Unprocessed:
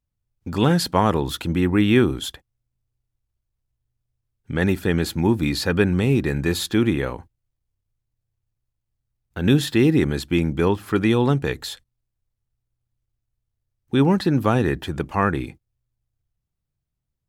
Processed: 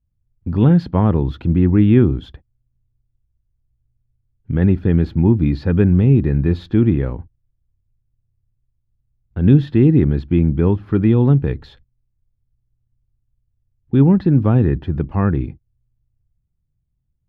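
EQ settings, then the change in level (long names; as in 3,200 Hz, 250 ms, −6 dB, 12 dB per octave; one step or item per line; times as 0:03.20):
high-frequency loss of the air 290 metres
low-shelf EQ 220 Hz +6.5 dB
low-shelf EQ 440 Hz +11 dB
−6.0 dB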